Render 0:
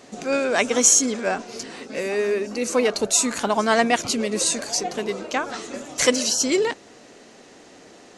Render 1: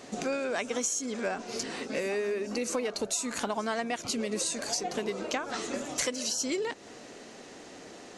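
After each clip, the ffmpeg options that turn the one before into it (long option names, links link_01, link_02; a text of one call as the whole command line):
ffmpeg -i in.wav -af "acompressor=threshold=-28dB:ratio=12" out.wav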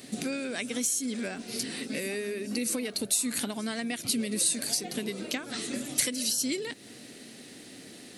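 ffmpeg -i in.wav -af "equalizer=frequency=125:width_type=o:width=1:gain=10,equalizer=frequency=250:width_type=o:width=1:gain=9,equalizer=frequency=1000:width_type=o:width=1:gain=-6,equalizer=frequency=2000:width_type=o:width=1:gain=6,equalizer=frequency=4000:width_type=o:width=1:gain=10,equalizer=frequency=8000:width_type=o:width=1:gain=5,aexciter=amount=12.1:drive=5.5:freq=9500,volume=-7dB" out.wav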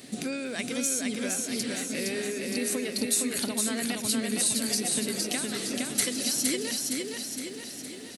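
ffmpeg -i in.wav -af "aecho=1:1:464|928|1392|1856|2320|2784|3248|3712:0.708|0.389|0.214|0.118|0.0648|0.0356|0.0196|0.0108" out.wav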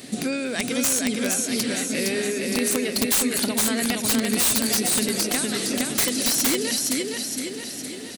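ffmpeg -i in.wav -af "aeval=exprs='(mod(9.44*val(0)+1,2)-1)/9.44':channel_layout=same,volume=6.5dB" out.wav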